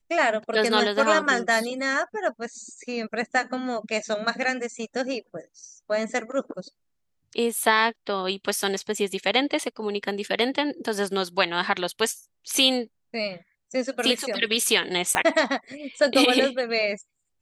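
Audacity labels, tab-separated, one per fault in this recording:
15.150000	15.150000	click −6 dBFS

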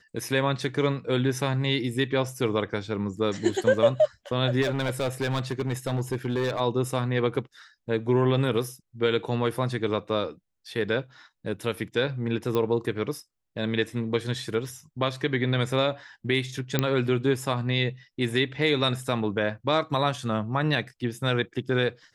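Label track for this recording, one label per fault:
4.610000	6.610000	clipping −22 dBFS
12.550000	12.550000	click −15 dBFS
16.790000	16.790000	click −8 dBFS

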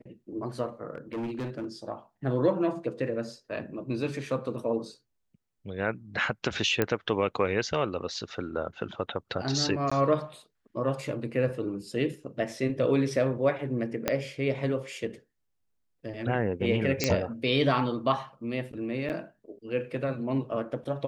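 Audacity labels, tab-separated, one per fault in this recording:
0.950000	1.670000	clipping −30 dBFS
6.820000	6.820000	click −11 dBFS
9.900000	9.910000	drop-out 15 ms
14.080000	14.080000	click −9 dBFS
17.040000	17.040000	click −8 dBFS
19.090000	19.100000	drop-out 8.7 ms

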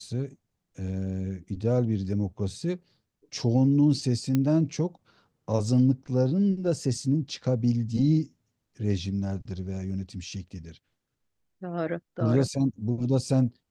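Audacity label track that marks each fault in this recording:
4.350000	4.350000	click −13 dBFS

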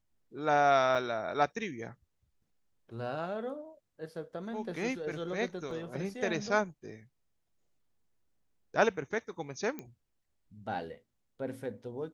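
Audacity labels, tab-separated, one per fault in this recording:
0.950000	0.950000	drop-out 4.6 ms
5.710000	5.710000	drop-out 2.8 ms
9.790000	9.790000	click −25 dBFS

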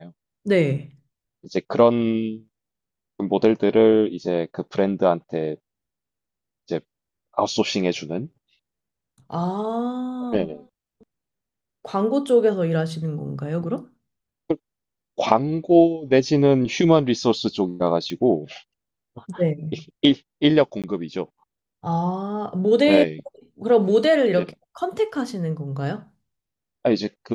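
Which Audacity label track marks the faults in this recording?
18.100000	18.100000	click −18 dBFS
20.820000	20.840000	drop-out 17 ms

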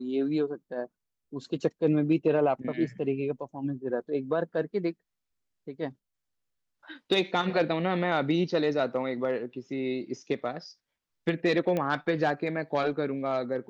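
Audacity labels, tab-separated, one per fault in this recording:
11.770000	11.770000	click −17 dBFS

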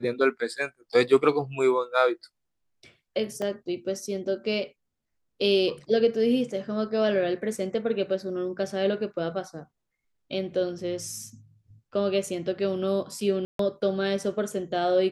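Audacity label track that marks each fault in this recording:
3.420000	3.420000	drop-out 2.4 ms
13.450000	13.590000	drop-out 143 ms

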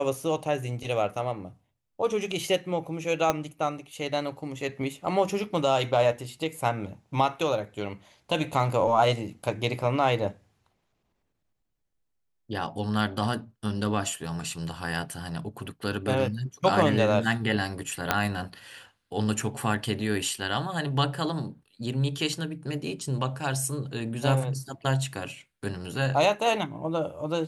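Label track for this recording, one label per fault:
3.300000	3.300000	click −9 dBFS
18.110000	18.110000	click −6 dBFS

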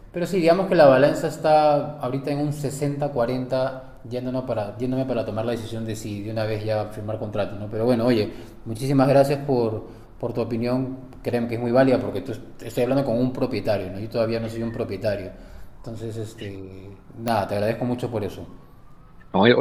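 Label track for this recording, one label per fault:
17.280000	17.280000	click −10 dBFS

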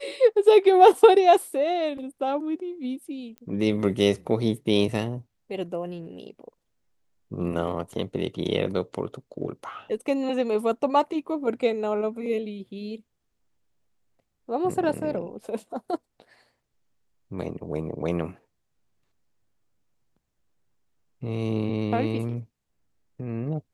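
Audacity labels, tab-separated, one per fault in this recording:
3.380000	3.380000	click −28 dBFS

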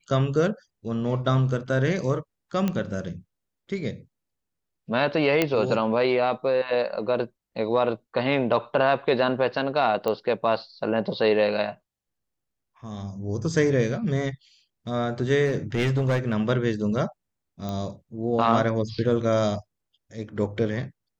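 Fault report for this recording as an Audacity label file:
2.680000	2.680000	click −13 dBFS
5.420000	5.420000	click −7 dBFS
10.080000	10.080000	click −14 dBFS
15.450000	16.340000	clipping −18.5 dBFS
17.690000	17.690000	click −19 dBFS

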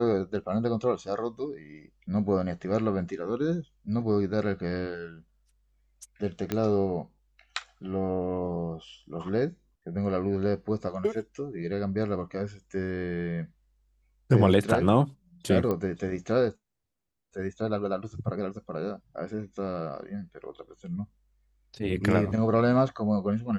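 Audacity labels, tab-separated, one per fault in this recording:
6.520000	6.520000	click −14 dBFS
15.710000	15.710000	click −17 dBFS

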